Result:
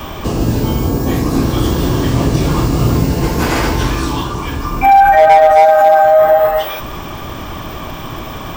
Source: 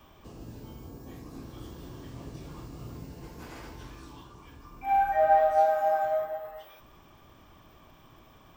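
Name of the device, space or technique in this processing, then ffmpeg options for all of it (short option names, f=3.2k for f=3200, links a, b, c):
loud club master: -af "acompressor=threshold=-29dB:ratio=1.5,asoftclip=type=hard:threshold=-22dB,alimiter=level_in=30.5dB:limit=-1dB:release=50:level=0:latency=1,volume=-1dB"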